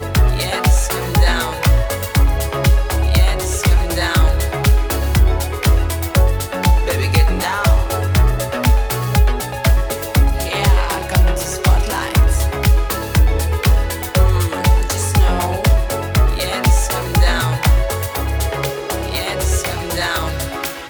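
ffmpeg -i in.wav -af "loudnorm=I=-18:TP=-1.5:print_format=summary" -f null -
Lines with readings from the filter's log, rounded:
Input Integrated:    -17.2 LUFS
Input True Peak:      -2.9 dBTP
Input LRA:             4.0 LU
Input Threshold:     -27.2 LUFS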